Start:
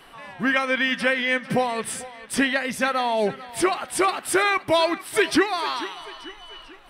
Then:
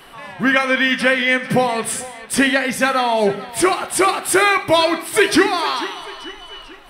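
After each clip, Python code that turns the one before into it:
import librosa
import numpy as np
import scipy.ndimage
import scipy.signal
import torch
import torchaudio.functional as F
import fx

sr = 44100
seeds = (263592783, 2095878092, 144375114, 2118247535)

y = fx.high_shelf(x, sr, hz=11000.0, db=5.0)
y = fx.rev_gated(y, sr, seeds[0], gate_ms=240, shape='falling', drr_db=10.0)
y = F.gain(torch.from_numpy(y), 5.5).numpy()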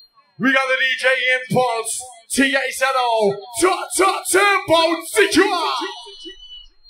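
y = x + 10.0 ** (-34.0 / 20.0) * np.sin(2.0 * np.pi * 4200.0 * np.arange(len(x)) / sr)
y = fx.noise_reduce_blind(y, sr, reduce_db=29)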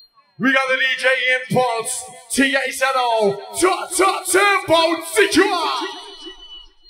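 y = fx.echo_feedback(x, sr, ms=284, feedback_pct=48, wet_db=-23)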